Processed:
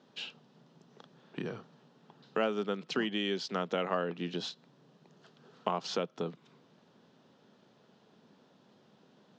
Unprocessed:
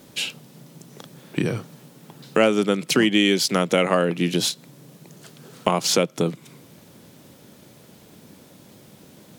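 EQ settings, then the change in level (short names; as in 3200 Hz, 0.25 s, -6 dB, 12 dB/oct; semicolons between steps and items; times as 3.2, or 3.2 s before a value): air absorption 200 m; speaker cabinet 240–8900 Hz, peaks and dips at 310 Hz -8 dB, 550 Hz -5 dB, 2200 Hz -9 dB, 8600 Hz -5 dB; -8.5 dB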